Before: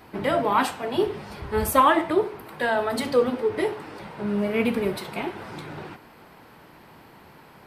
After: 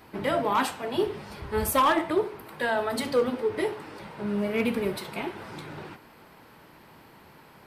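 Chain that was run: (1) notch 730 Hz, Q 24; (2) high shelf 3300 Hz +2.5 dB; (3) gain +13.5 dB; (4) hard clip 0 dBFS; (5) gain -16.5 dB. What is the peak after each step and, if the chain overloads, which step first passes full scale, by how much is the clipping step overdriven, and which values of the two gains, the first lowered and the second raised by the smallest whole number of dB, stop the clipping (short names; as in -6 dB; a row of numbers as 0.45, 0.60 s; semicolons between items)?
-6.5, -6.5, +7.0, 0.0, -16.5 dBFS; step 3, 7.0 dB; step 3 +6.5 dB, step 5 -9.5 dB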